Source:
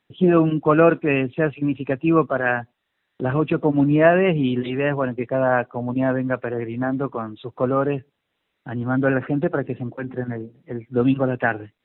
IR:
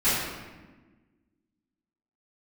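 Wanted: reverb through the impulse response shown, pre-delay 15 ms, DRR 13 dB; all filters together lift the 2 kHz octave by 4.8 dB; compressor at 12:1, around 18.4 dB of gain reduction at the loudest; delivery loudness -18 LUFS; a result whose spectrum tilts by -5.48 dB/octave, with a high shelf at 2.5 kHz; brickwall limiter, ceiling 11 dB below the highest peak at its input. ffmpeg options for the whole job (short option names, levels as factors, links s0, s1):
-filter_complex "[0:a]equalizer=f=2000:t=o:g=3.5,highshelf=f=2500:g=7,acompressor=threshold=0.0447:ratio=12,alimiter=level_in=1.5:limit=0.0631:level=0:latency=1,volume=0.668,asplit=2[s0][s1];[1:a]atrim=start_sample=2205,adelay=15[s2];[s1][s2]afir=irnorm=-1:irlink=0,volume=0.0398[s3];[s0][s3]amix=inputs=2:normalize=0,volume=8.41"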